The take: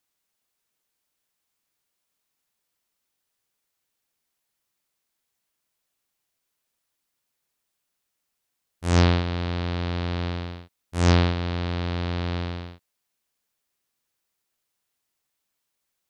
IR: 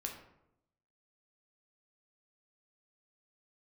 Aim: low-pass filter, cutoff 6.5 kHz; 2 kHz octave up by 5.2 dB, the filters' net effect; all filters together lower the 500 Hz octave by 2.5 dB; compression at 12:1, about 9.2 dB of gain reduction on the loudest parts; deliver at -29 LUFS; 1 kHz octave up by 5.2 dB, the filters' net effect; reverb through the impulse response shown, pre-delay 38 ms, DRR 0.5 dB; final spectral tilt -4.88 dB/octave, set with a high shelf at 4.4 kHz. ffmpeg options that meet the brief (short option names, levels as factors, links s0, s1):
-filter_complex "[0:a]lowpass=6500,equalizer=f=500:t=o:g=-5.5,equalizer=f=1000:t=o:g=7,equalizer=f=2000:t=o:g=6,highshelf=f=4400:g=-7,acompressor=threshold=0.0794:ratio=12,asplit=2[s0][s1];[1:a]atrim=start_sample=2205,adelay=38[s2];[s1][s2]afir=irnorm=-1:irlink=0,volume=1.06[s3];[s0][s3]amix=inputs=2:normalize=0,volume=0.841"